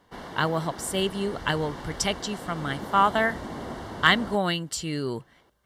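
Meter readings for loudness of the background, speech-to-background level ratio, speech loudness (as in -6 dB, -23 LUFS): -38.5 LUFS, 12.0 dB, -26.5 LUFS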